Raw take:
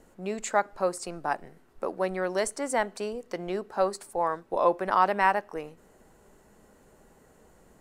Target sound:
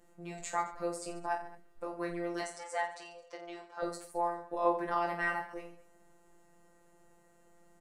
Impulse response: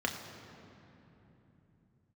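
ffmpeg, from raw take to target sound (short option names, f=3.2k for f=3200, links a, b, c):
-filter_complex "[0:a]asettb=1/sr,asplit=3[a][b][c];[a]atrim=end=2.414[d];[b]atrim=start=2.41:end=3.83,asetpts=PTS-STARTPTS,afade=t=in:d=0.004:c=qsin,afade=t=out:st=1.416:d=0.004:c=qsin,acrossover=split=510 7800:gain=0.112 1 0.126[e][f][g];[e][f][g]amix=inputs=3:normalize=0[h];[c]atrim=start=3.826[i];[d][h]acrossfade=d=0.004:c1=hsin:c2=qsin[j];[j][i]acrossfade=d=0.004:c1=qsin:c2=hsin,afftfilt=real='hypot(re,im)*cos(PI*b)':imag='0':win_size=1024:overlap=0.75,aecho=1:1:20|48|87.2|142.1|218.9:0.631|0.398|0.251|0.158|0.1,volume=-5.5dB"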